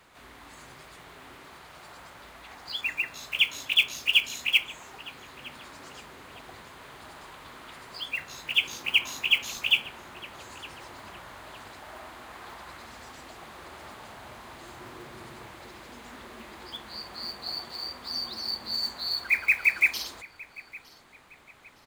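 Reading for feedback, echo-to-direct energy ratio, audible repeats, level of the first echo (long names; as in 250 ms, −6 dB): 33%, −21.5 dB, 2, −22.0 dB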